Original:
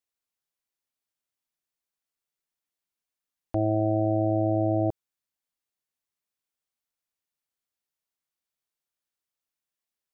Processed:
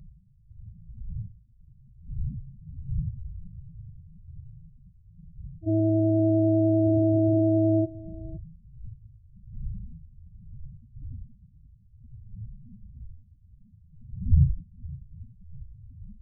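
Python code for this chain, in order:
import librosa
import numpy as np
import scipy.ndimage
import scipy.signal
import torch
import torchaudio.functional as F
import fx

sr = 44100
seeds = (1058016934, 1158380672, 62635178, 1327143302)

y = fx.dmg_wind(x, sr, seeds[0], corner_hz=150.0, level_db=-37.0)
y = fx.stretch_grains(y, sr, factor=1.6, grain_ms=199.0)
y = fx.spec_topn(y, sr, count=4)
y = y + 10.0 ** (-20.0 / 20.0) * np.pad(y, (int(517 * sr / 1000.0), 0))[:len(y)]
y = fx.notch_cascade(y, sr, direction='falling', hz=0.25)
y = F.gain(torch.from_numpy(y), 6.0).numpy()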